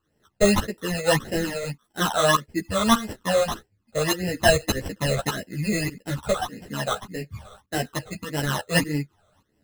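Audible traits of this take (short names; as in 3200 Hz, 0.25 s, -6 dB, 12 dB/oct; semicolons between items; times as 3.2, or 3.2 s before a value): aliases and images of a low sample rate 2300 Hz, jitter 0%; phasing stages 12, 1.7 Hz, lowest notch 290–1200 Hz; tremolo saw up 1.7 Hz, depth 85%; a shimmering, thickened sound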